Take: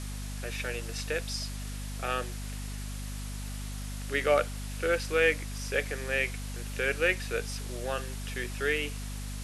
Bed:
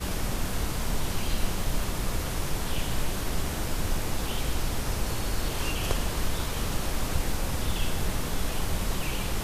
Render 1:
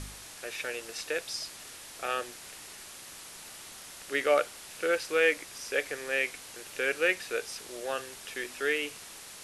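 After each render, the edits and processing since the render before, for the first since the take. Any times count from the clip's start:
hum removal 50 Hz, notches 5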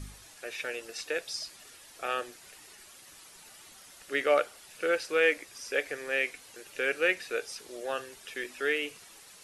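broadband denoise 9 dB, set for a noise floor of −47 dBFS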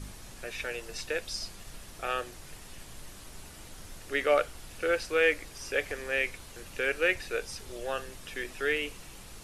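mix in bed −19.5 dB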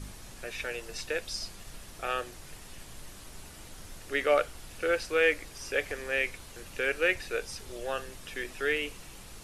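no processing that can be heard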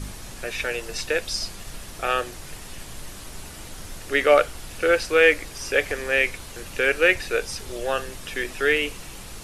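level +8.5 dB

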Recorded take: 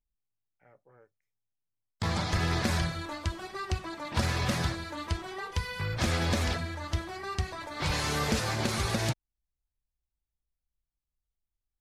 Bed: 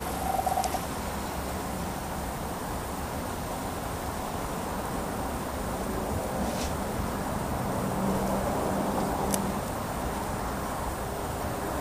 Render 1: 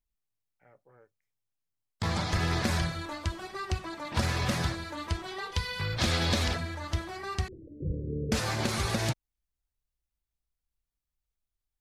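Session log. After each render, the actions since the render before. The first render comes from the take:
0:05.25–0:06.48: parametric band 3,900 Hz +6.5 dB 0.89 octaves
0:07.48–0:08.32: Butterworth low-pass 510 Hz 96 dB per octave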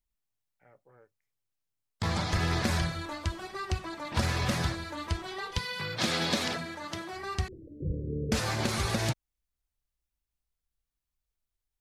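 0:05.58–0:07.13: high-pass filter 140 Hz 24 dB per octave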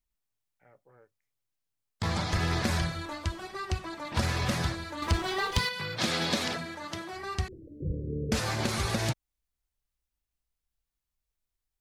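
0:05.02–0:05.69: leveller curve on the samples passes 2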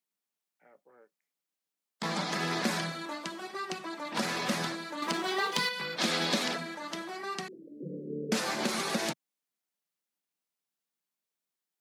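Butterworth high-pass 170 Hz 48 dB per octave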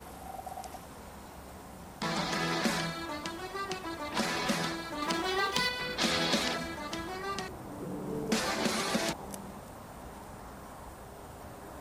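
mix in bed −14.5 dB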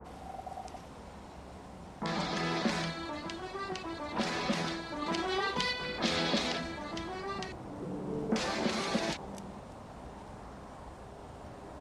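high-frequency loss of the air 77 metres
multiband delay without the direct sound lows, highs 40 ms, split 1,500 Hz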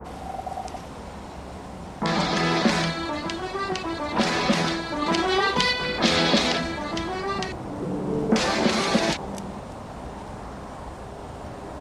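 level +10.5 dB

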